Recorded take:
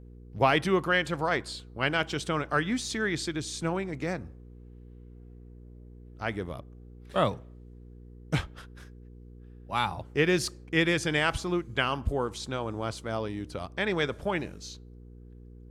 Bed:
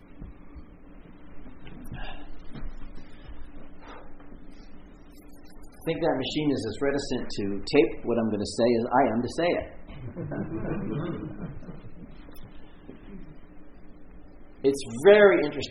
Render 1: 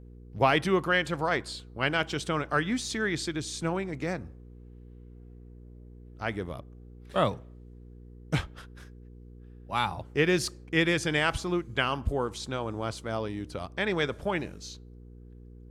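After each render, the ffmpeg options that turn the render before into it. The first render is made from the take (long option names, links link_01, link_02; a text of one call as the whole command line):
ffmpeg -i in.wav -af anull out.wav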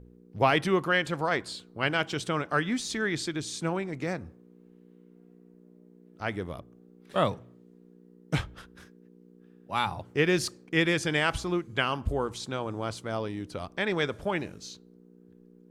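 ffmpeg -i in.wav -af "bandreject=frequency=60:width_type=h:width=4,bandreject=frequency=120:width_type=h:width=4" out.wav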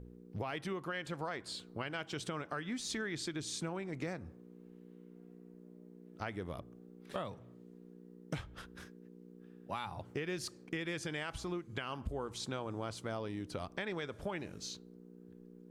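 ffmpeg -i in.wav -af "alimiter=limit=-21dB:level=0:latency=1:release=393,acompressor=threshold=-38dB:ratio=3" out.wav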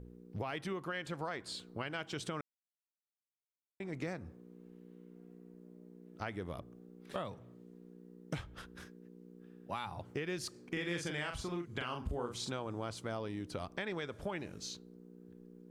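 ffmpeg -i in.wav -filter_complex "[0:a]asettb=1/sr,asplit=3[link_01][link_02][link_03];[link_01]atrim=end=10.504[link_04];[link_02]atrim=start=10.5:end=12.51,asetpts=PTS-STARTPTS,afade=type=in:duration=0.004:curve=qsin,afade=type=out:start_time=2.006:duration=0.004:curve=qsin,asplit=2[link_05][link_06];[link_06]adelay=41,volume=-4.5dB[link_07];[link_05][link_07]amix=inputs=2:normalize=0,atrim=end_sample=88641[link_08];[link_03]atrim=start=12.506[link_09];[link_04][link_08]acrossfade=duration=0.004:curve1=hsin:curve2=qsin[link_10];[link_10][link_09]acrossfade=duration=0.004:curve1=qsin:curve2=hsin,asplit=3[link_11][link_12][link_13];[link_11]atrim=end=2.41,asetpts=PTS-STARTPTS,afade=type=out:start_time=2.406:duration=0.004:curve=hsin[link_14];[link_12]atrim=start=2.41:end=3.8,asetpts=PTS-STARTPTS,volume=0[link_15];[link_13]atrim=start=3.8,asetpts=PTS-STARTPTS,afade=type=in:duration=0.004:curve=hsin[link_16];[link_14][link_15][link_16]concat=n=3:v=0:a=1" out.wav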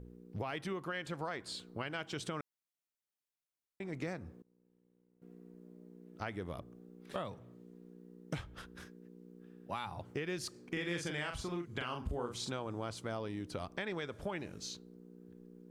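ffmpeg -i in.wav -filter_complex "[0:a]asettb=1/sr,asplit=3[link_01][link_02][link_03];[link_01]atrim=end=4.424[link_04];[link_02]atrim=start=4.42:end=5.22,asetpts=PTS-STARTPTS,afade=type=in:duration=0.004:curve=qsin,afade=type=out:start_time=0.796:duration=0.004:curve=qsin,agate=range=-33dB:threshold=-44dB:ratio=3:release=100:detection=peak[link_05];[link_03]atrim=start=5.216[link_06];[link_04][link_05]acrossfade=duration=0.004:curve1=hsin:curve2=qsin[link_07];[link_07][link_06]acrossfade=duration=0.004:curve1=qsin:curve2=hsin" out.wav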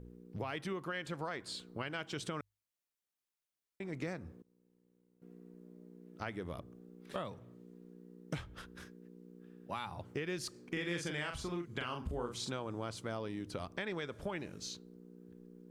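ffmpeg -i in.wav -af "equalizer=frequency=750:width_type=o:width=0.44:gain=-2,bandreject=frequency=50:width_type=h:width=6,bandreject=frequency=100:width_type=h:width=6" out.wav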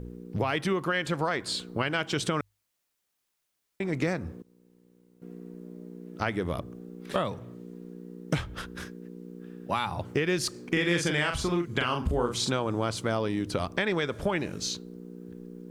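ffmpeg -i in.wav -af "volume=12dB" out.wav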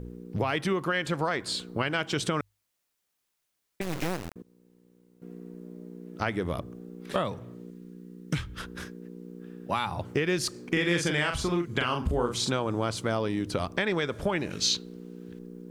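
ffmpeg -i in.wav -filter_complex "[0:a]asettb=1/sr,asplit=3[link_01][link_02][link_03];[link_01]atrim=end=3.814[link_04];[link_02]atrim=start=3.81:end=4.36,asetpts=PTS-STARTPTS,afade=type=in:duration=0.004:curve=qsin,afade=type=out:start_time=0.546:duration=0.004:curve=qsin,acrusher=bits=3:dc=4:mix=0:aa=0.000001[link_05];[link_03]atrim=start=4.356[link_06];[link_04][link_05]acrossfade=duration=0.004:curve1=hsin:curve2=qsin[link_07];[link_07][link_06]acrossfade=duration=0.004:curve1=qsin:curve2=hsin,asettb=1/sr,asplit=3[link_08][link_09][link_10];[link_08]atrim=end=7.704[link_11];[link_09]atrim=start=7.7:end=8.6,asetpts=PTS-STARTPTS,afade=type=in:duration=0.004:curve=qsin,afade=type=out:start_time=0.896:duration=0.004:curve=qsin,equalizer=frequency=670:width=1.2:gain=-13.5[link_12];[link_10]atrim=start=8.596[link_13];[link_11][link_12]acrossfade=duration=0.004:curve1=hsin:curve2=qsin[link_14];[link_14][link_13]acrossfade=duration=0.004:curve1=qsin:curve2=hsin,asettb=1/sr,asplit=3[link_15][link_16][link_17];[link_15]atrim=end=14.504[link_18];[link_16]atrim=start=14.5:end=15.39,asetpts=PTS-STARTPTS,afade=type=in:duration=0.004:curve=qsin,afade=type=out:start_time=0.886:duration=0.004:curve=qsin,equalizer=frequency=3100:width=0.64:gain=10[link_19];[link_17]atrim=start=15.386[link_20];[link_18][link_19]acrossfade=duration=0.004:curve1=hsin:curve2=qsin[link_21];[link_21][link_20]acrossfade=duration=0.004:curve1=qsin:curve2=hsin" out.wav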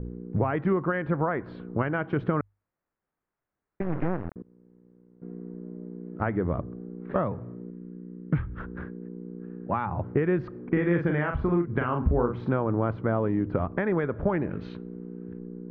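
ffmpeg -i in.wav -af "lowpass=frequency=1700:width=0.5412,lowpass=frequency=1700:width=1.3066,lowshelf=frequency=400:gain=5.5" out.wav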